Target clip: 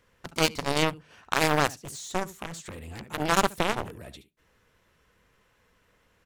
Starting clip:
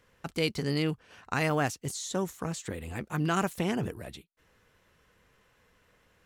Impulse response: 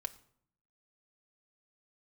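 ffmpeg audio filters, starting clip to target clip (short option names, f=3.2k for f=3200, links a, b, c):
-filter_complex "[0:a]aecho=1:1:72:0.178,asplit=2[a][b];[1:a]atrim=start_sample=2205,asetrate=61740,aresample=44100[c];[b][c]afir=irnorm=-1:irlink=0,volume=-11.5dB[d];[a][d]amix=inputs=2:normalize=0,aeval=exprs='0.251*(cos(1*acos(clip(val(0)/0.251,-1,1)))-cos(1*PI/2))+0.0224*(cos(3*acos(clip(val(0)/0.251,-1,1)))-cos(3*PI/2))+0.0398*(cos(7*acos(clip(val(0)/0.251,-1,1)))-cos(7*PI/2))':c=same,volume=7dB"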